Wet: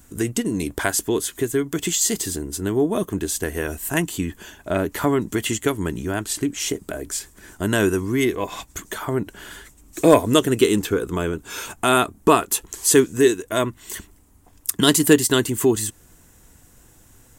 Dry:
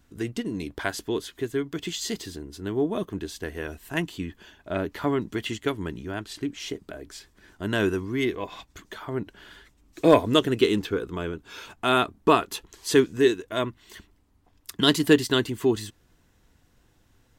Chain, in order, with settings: resonant high shelf 5.9 kHz +10 dB, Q 1.5; in parallel at +2.5 dB: compression, threshold -31 dBFS, peak gain reduction 18.5 dB; on the sum: trim +2 dB

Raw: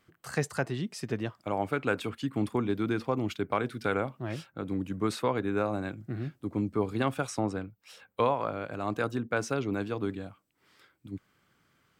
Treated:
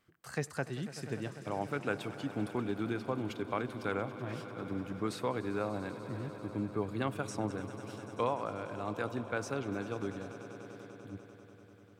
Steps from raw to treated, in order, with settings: echo with a slow build-up 98 ms, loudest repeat 5, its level -17.5 dB; trim -6 dB

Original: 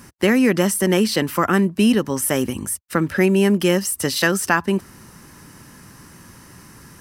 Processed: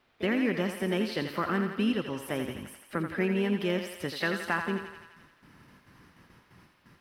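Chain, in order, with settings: gate with hold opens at -33 dBFS; pre-emphasis filter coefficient 0.8; harmony voices +3 st -13 dB; in parallel at -11 dB: word length cut 8-bit, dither triangular; on the sum: distance through air 380 m; on a send: thinning echo 85 ms, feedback 68%, high-pass 460 Hz, level -6.5 dB

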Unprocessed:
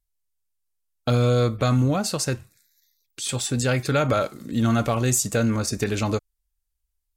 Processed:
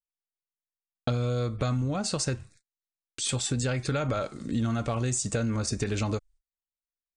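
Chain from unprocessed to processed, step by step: steep low-pass 9.5 kHz 96 dB/octave; bass shelf 62 Hz +11.5 dB; compression 6:1, threshold -25 dBFS, peak gain reduction 10.5 dB; gate -54 dBFS, range -38 dB

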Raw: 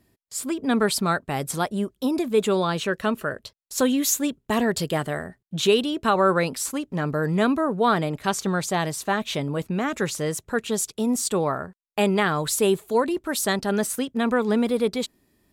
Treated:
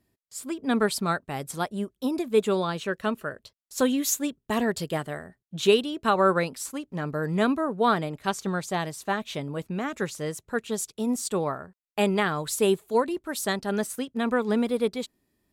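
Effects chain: upward expansion 1.5:1, over -31 dBFS

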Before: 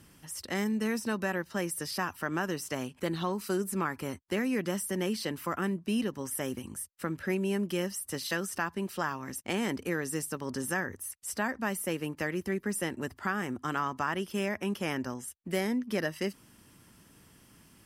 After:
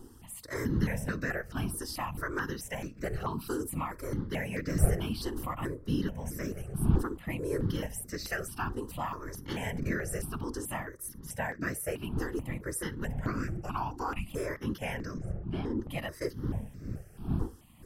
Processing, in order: wind noise 180 Hz -35 dBFS; 15.18–15.79 s: tape spacing loss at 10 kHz 24 dB; on a send at -21 dB: reverberation, pre-delay 3 ms; on the sum: whisper effect; 13.25–14.30 s: frequency shift -370 Hz; stepped phaser 4.6 Hz 620–3100 Hz

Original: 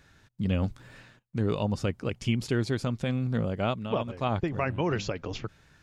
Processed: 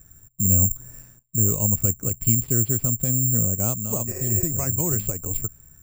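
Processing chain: spectral replace 4.10–4.42 s, 360–2900 Hz after; RIAA curve playback; careless resampling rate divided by 6×, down none, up zero stuff; treble shelf 4.1 kHz -8 dB; trim -5.5 dB

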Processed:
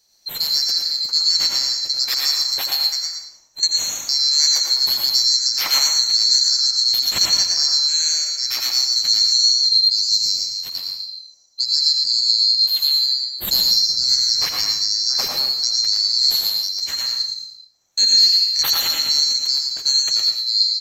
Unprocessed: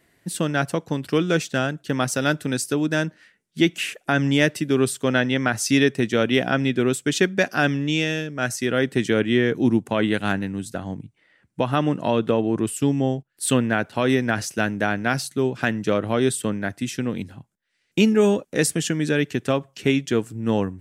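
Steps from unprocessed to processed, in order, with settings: split-band scrambler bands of 4 kHz; 2.95–3.63 s: compression, threshold -29 dBFS, peak gain reduction 13.5 dB; 12.94–14.74 s: bass shelf 360 Hz +7.5 dB; delay 115 ms -5 dB; plate-style reverb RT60 0.66 s, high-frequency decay 0.8×, pre-delay 75 ms, DRR 1.5 dB

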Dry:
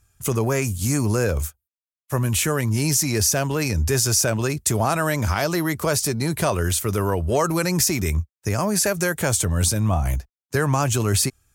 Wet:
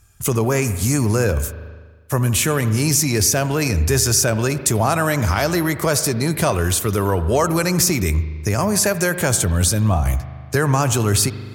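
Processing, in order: reverberation RT60 1.3 s, pre-delay 74 ms, DRR 12.5 dB; in parallel at +1 dB: compression, threshold -34 dBFS, peak gain reduction 17.5 dB; on the sum: trim +1.5 dB

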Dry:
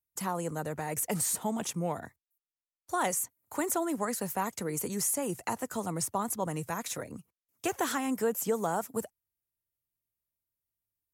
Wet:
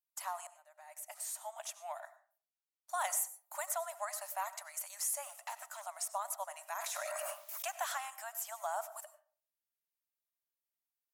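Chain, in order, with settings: 0.47–2.02 s: fade in; 2.94–3.66 s: treble shelf 7.9 kHz +5.5 dB; 5.24–5.86 s: hard clipper -32 dBFS, distortion -21 dB; brick-wall FIR high-pass 570 Hz; reverberation RT60 0.45 s, pre-delay 55 ms, DRR 14 dB; 6.75–7.65 s: level flattener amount 100%; trim -5.5 dB

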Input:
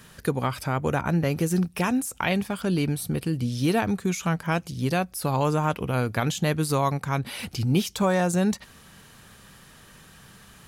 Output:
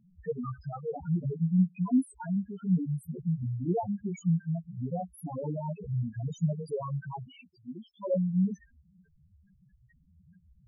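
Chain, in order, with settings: chorus voices 4, 0.96 Hz, delay 14 ms, depth 3 ms; loudest bins only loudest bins 2; 7.41–8.14 s: Chebyshev band-pass 420–2000 Hz, order 2

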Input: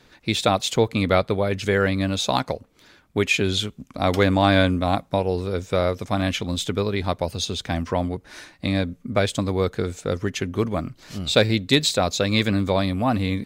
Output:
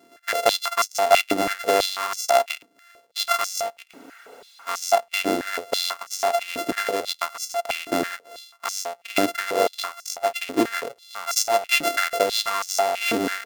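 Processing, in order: sorted samples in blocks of 64 samples; spectral freeze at 3.92 s, 0.77 s; step-sequenced high-pass 6.1 Hz 310–5900 Hz; trim -2 dB

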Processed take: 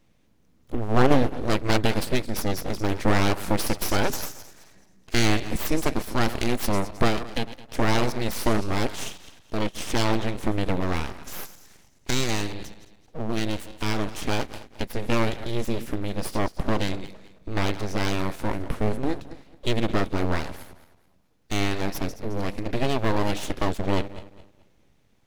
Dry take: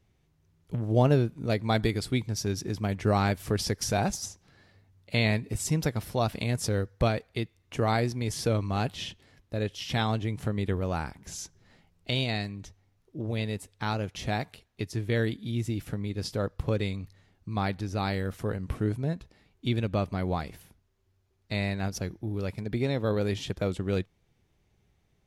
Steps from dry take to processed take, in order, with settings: backward echo that repeats 108 ms, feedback 53%, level -13.5 dB; full-wave rectifier; trim +6.5 dB

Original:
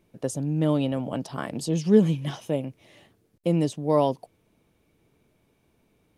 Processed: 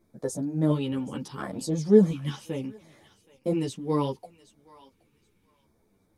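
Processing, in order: LFO notch square 0.71 Hz 660–2800 Hz; thinning echo 773 ms, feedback 21%, high-pass 1 kHz, level -18 dB; three-phase chorus; trim +1.5 dB

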